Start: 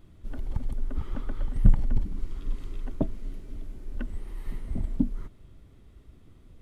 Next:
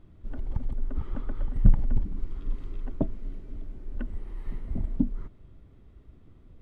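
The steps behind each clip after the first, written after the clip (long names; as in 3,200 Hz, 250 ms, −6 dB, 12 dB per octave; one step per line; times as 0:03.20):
low-pass filter 1,800 Hz 6 dB per octave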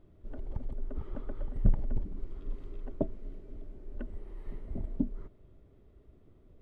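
hollow resonant body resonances 410/590 Hz, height 8 dB, ringing for 20 ms
level −7 dB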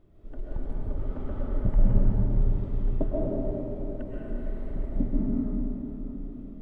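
convolution reverb RT60 4.2 s, pre-delay 90 ms, DRR −7 dB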